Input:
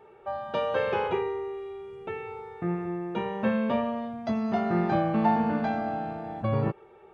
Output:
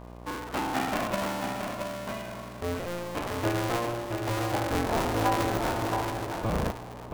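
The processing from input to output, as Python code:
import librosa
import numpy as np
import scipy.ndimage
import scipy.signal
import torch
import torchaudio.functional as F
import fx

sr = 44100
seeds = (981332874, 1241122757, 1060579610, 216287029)

p1 = fx.cycle_switch(x, sr, every=2, mode='inverted')
p2 = fx.dmg_buzz(p1, sr, base_hz=60.0, harmonics=20, level_db=-42.0, tilt_db=-4, odd_only=False)
p3 = p2 + fx.echo_single(p2, sr, ms=674, db=-5.5, dry=0)
y = p3 * 10.0 ** (-2.5 / 20.0)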